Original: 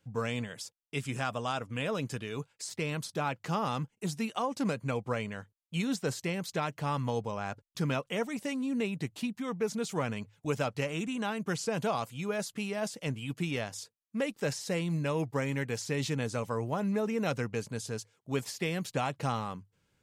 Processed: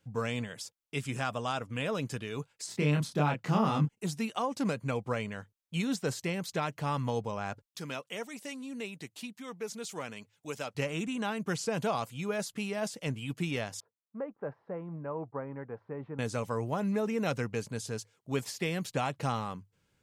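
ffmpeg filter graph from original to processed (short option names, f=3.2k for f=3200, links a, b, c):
-filter_complex "[0:a]asettb=1/sr,asplit=3[a][b][c];[a]atrim=end=2.664[d];[b]atrim=start=2.66:end=3.89,asetpts=PTS-STARTPTS,afade=t=in:d=0.004:c=qsin,afade=t=out:st=1.226:d=0.004:c=qsin,highpass=190,bass=f=250:g=13,treble=f=4k:g=-4,asplit=2[e][f];[f]adelay=27,volume=-3dB[g];[e][g]amix=inputs=2:normalize=0,atrim=end_sample=54243[h];[c]atrim=start=3.886[i];[d][h]acrossfade=d=0.004:c1=hsin:c2=qsin[j];[j][i]acrossfade=d=0.004:c1=qsin:c2=hsin,asettb=1/sr,asplit=3[k][l][m];[k]atrim=end=7.664[n];[l]atrim=start=7.66:end=10.75,asetpts=PTS-STARTPTS,afade=t=in:d=0.004:c=qsin,afade=t=out:st=3.086:d=0.004:c=qsin,highpass=f=590:p=1,equalizer=f=1.1k:w=0.47:g=-5[o];[m]atrim=start=10.746[p];[n][o]acrossfade=d=0.004:c1=hsin:c2=qsin[q];[q][p]acrossfade=d=0.004:c1=qsin:c2=hsin,asettb=1/sr,asplit=3[r][s][t];[r]atrim=end=13.804[u];[s]atrim=start=13.8:end=16.19,asetpts=PTS-STARTPTS,afade=t=in:d=0.004:c=qsin,afade=t=out:st=2.386:d=0.004:c=qsin,lowpass=f=1.2k:w=0.5412,lowpass=f=1.2k:w=1.3066,lowshelf=f=410:g=-11.5[v];[t]atrim=start=16.186[w];[u][v]acrossfade=d=0.004:c1=hsin:c2=qsin[x];[x][w]acrossfade=d=0.004:c1=qsin:c2=hsin"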